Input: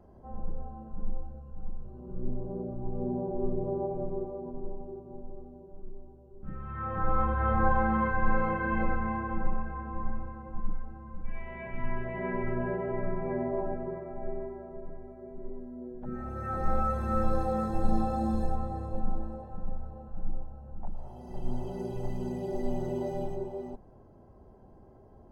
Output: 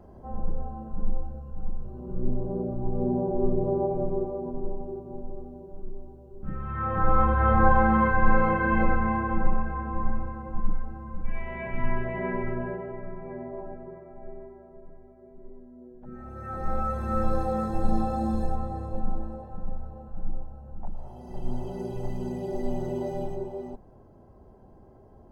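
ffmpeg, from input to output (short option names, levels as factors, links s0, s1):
-af "volume=5.01,afade=t=out:st=11.87:d=1.12:silence=0.251189,afade=t=in:st=16.02:d=1.25:silence=0.398107"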